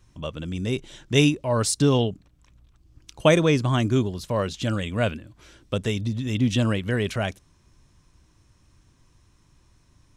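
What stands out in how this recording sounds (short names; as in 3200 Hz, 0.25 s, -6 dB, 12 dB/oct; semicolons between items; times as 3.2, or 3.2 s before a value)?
noise floor -61 dBFS; spectral tilt -5.5 dB/oct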